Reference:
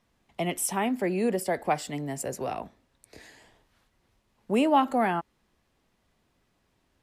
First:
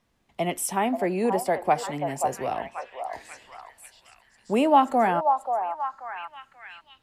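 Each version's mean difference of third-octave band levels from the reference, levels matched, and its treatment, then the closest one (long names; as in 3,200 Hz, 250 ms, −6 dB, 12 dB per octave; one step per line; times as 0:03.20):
3.5 dB: dynamic equaliser 790 Hz, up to +5 dB, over −36 dBFS, Q 0.98
echo through a band-pass that steps 534 ms, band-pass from 810 Hz, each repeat 0.7 octaves, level −3.5 dB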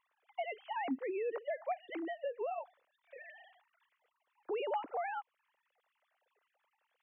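14.5 dB: three sine waves on the formant tracks
downward compressor 4 to 1, threshold −39 dBFS, peak gain reduction 19.5 dB
level +1.5 dB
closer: first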